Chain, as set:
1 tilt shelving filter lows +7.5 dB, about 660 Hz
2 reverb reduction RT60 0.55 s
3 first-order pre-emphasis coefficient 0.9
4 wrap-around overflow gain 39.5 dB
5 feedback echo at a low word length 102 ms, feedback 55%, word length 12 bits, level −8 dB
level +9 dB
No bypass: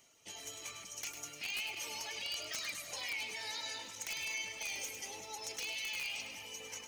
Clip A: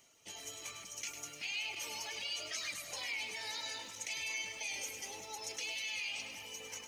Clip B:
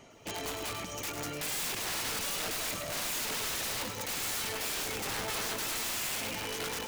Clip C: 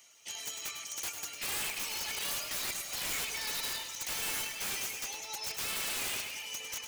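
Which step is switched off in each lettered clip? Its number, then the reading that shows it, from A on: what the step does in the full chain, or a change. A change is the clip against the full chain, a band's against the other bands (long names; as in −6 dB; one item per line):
4, distortion level −13 dB
3, 125 Hz band +8.5 dB
1, 2 kHz band −3.5 dB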